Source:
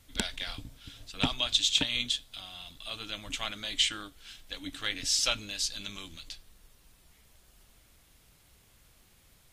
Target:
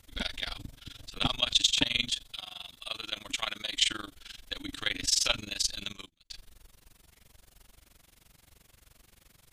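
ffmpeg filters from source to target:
-filter_complex "[0:a]asettb=1/sr,asplit=3[s0][s1][s2];[s0]atrim=end=2.354[s3];[s1]atrim=start=2.35:end=3.8,asetpts=PTS-STARTPTS,afade=t=in:d=0.004:c=qsin,afade=t=out:st=1.446:d=0.004:c=qsin,lowshelf=f=290:g=-9[s4];[s2]atrim=start=3.796[s5];[s3][s4]acrossfade=d=0.004:c1=hsin:c2=qsin[s6];[s6][s5]acrossfade=d=0.004:c1=qsin:c2=hsin,asplit=3[s7][s8][s9];[s7]afade=t=out:st=5.9:d=0.02[s10];[s8]agate=range=0.0282:threshold=0.00891:ratio=16:detection=peak,afade=t=in:st=5.9:d=0.02,afade=t=out:st=6.3:d=0.02[s11];[s9]afade=t=in:st=6.3:d=0.02[s12];[s10][s11][s12]amix=inputs=3:normalize=0,tremolo=f=23:d=0.947,volume=1.88"

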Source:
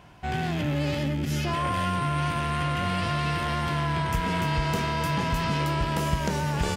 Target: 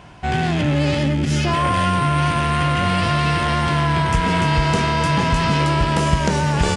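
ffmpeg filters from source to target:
-af "aresample=22050,aresample=44100,volume=2.66"

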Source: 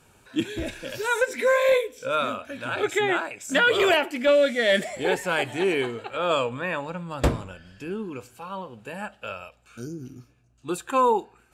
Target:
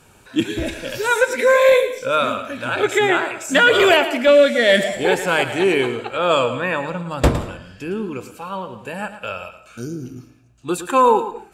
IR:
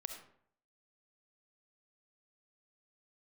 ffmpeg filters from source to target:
-filter_complex "[0:a]asplit=2[s0][s1];[1:a]atrim=start_sample=2205,afade=t=out:st=0.27:d=0.01,atrim=end_sample=12348,adelay=111[s2];[s1][s2]afir=irnorm=-1:irlink=0,volume=0.376[s3];[s0][s3]amix=inputs=2:normalize=0,volume=2.11"

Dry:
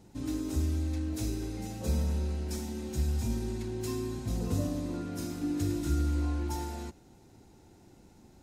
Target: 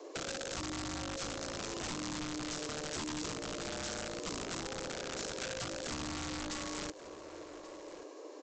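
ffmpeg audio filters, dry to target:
-filter_complex "[0:a]highpass=65,afreqshift=230,acompressor=threshold=0.00891:ratio=12,aresample=16000,aeval=exprs='(mod(89.1*val(0)+1,2)-1)/89.1':c=same,aresample=44100,aecho=1:1:1133:0.119,acrossover=split=250|3000[s0][s1][s2];[s1]acompressor=threshold=0.00355:ratio=6[s3];[s0][s3][s2]amix=inputs=3:normalize=0,volume=2.51"

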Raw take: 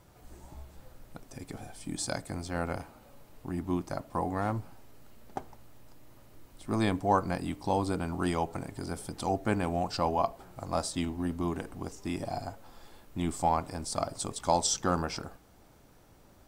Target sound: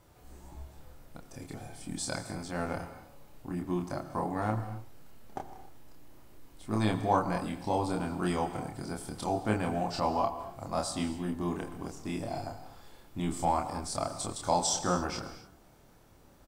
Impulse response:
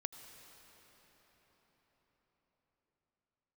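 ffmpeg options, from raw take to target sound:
-filter_complex "[0:a]asplit=2[s0][s1];[s1]adelay=28,volume=0.708[s2];[s0][s2]amix=inputs=2:normalize=0[s3];[1:a]atrim=start_sample=2205,afade=t=out:st=0.33:d=0.01,atrim=end_sample=14994[s4];[s3][s4]afir=irnorm=-1:irlink=0"

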